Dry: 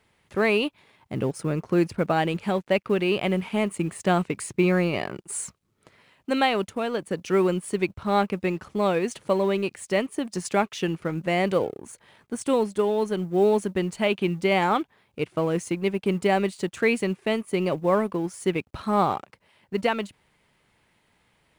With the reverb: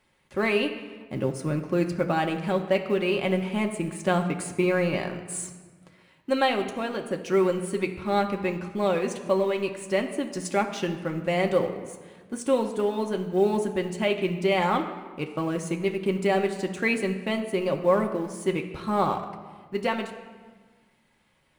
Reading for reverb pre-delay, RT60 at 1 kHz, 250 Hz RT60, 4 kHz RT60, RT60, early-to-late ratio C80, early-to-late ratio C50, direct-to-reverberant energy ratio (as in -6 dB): 3 ms, 1.5 s, 2.0 s, 1.0 s, 1.5 s, 11.0 dB, 9.5 dB, 3.0 dB